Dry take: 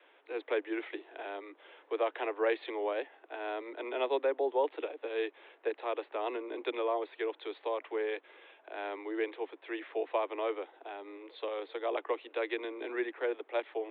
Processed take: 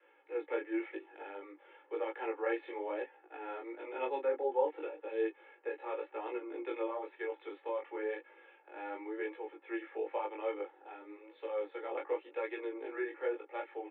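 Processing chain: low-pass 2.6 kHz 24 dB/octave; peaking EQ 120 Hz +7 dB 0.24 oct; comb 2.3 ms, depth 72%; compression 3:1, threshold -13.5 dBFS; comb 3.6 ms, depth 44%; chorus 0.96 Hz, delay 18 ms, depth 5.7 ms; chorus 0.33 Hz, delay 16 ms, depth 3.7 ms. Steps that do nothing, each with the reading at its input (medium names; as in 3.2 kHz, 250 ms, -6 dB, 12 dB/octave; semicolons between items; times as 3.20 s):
peaking EQ 120 Hz: input has nothing below 240 Hz; compression, threshold -13.5 dBFS: peak at its input -16.5 dBFS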